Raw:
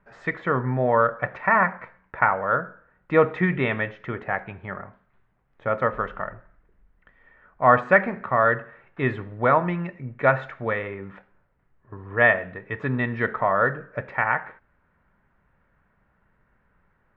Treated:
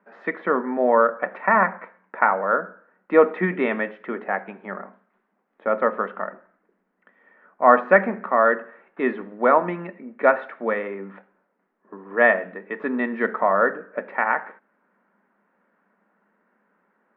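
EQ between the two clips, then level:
elliptic high-pass filter 200 Hz, stop band 40 dB
high-frequency loss of the air 160 metres
high-shelf EQ 3,300 Hz −9 dB
+4.0 dB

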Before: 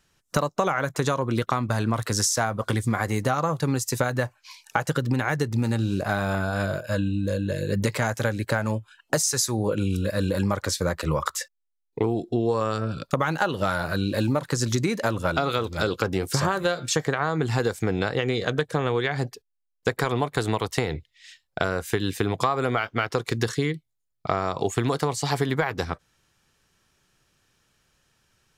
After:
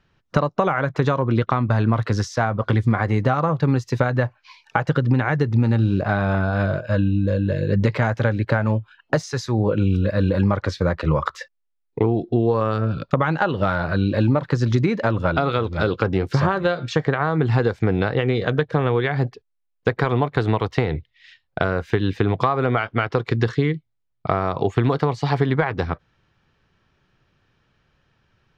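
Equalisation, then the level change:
high-frequency loss of the air 260 metres
parametric band 110 Hz +3 dB 1.4 octaves
+4.5 dB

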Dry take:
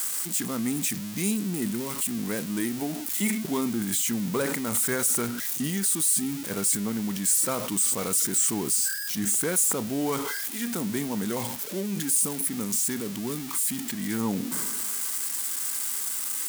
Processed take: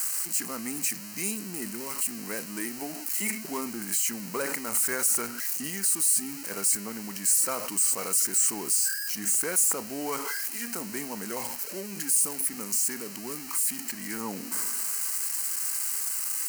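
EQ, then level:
high-pass filter 630 Hz 6 dB per octave
Butterworth band-reject 3,500 Hz, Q 3.7
0.0 dB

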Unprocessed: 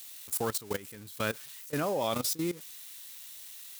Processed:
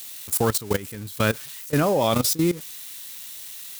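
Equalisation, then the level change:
low-shelf EQ 190 Hz +8.5 dB
+8.5 dB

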